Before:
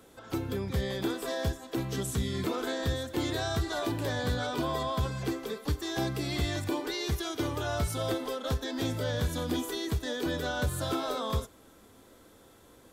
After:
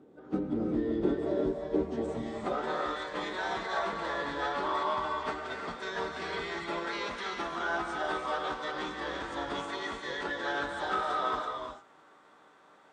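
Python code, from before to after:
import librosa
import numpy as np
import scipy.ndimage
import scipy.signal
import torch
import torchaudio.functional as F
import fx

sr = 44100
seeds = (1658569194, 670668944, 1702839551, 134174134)

y = fx.pitch_keep_formants(x, sr, semitones=-9.5)
y = fx.rev_gated(y, sr, seeds[0], gate_ms=380, shape='rising', drr_db=2.5)
y = fx.filter_sweep_bandpass(y, sr, from_hz=320.0, to_hz=1200.0, start_s=1.55, end_s=3.03, q=1.3)
y = y * librosa.db_to_amplitude(5.5)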